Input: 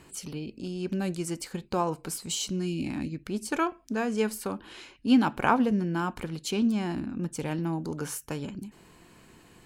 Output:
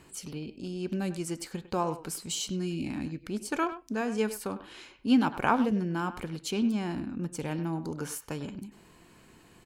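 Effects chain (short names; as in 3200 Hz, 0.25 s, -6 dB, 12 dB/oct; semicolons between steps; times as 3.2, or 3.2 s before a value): speakerphone echo 0.1 s, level -12 dB; gain -2 dB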